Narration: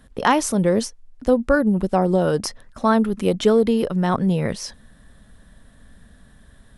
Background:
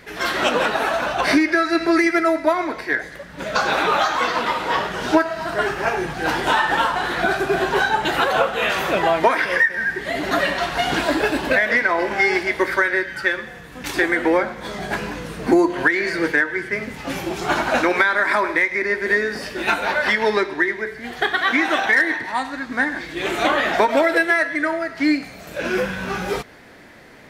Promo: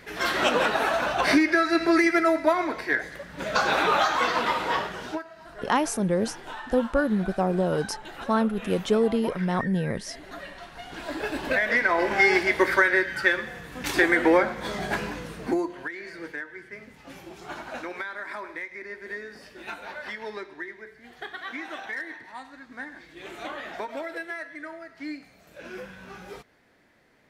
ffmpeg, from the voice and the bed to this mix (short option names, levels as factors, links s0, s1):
-filter_complex "[0:a]adelay=5450,volume=0.501[s0];[1:a]volume=5.96,afade=t=out:st=4.61:d=0.61:silence=0.141254,afade=t=in:st=10.91:d=1.33:silence=0.112202,afade=t=out:st=14.69:d=1.12:silence=0.158489[s1];[s0][s1]amix=inputs=2:normalize=0"